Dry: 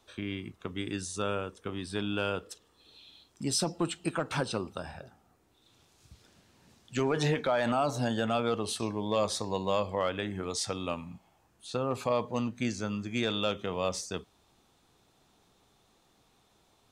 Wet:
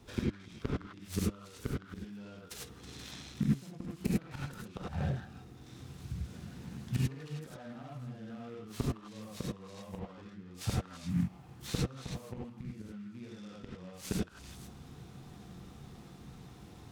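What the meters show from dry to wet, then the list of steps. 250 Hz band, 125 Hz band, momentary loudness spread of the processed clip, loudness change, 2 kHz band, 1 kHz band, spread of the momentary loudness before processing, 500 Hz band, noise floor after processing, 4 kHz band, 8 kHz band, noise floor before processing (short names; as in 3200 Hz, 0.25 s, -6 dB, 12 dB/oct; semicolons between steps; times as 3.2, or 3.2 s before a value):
-3.5 dB, +1.0 dB, 16 LU, -7.5 dB, -11.5 dB, -15.0 dB, 11 LU, -14.0 dB, -53 dBFS, -11.0 dB, -9.5 dB, -68 dBFS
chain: bell 130 Hz +13 dB 3 oct; flipped gate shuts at -20 dBFS, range -31 dB; low shelf 250 Hz +4.5 dB; on a send: delay with a stepping band-pass 0.16 s, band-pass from 1400 Hz, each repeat 1.4 oct, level -4.5 dB; on the sum: non-linear reverb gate 0.12 s rising, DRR -5 dB; in parallel at -3 dB: compressor, threshold -43 dBFS, peak gain reduction 21 dB; on the sum: notch 640 Hz, Q 12; noise-modulated delay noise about 1700 Hz, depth 0.038 ms; gain -4 dB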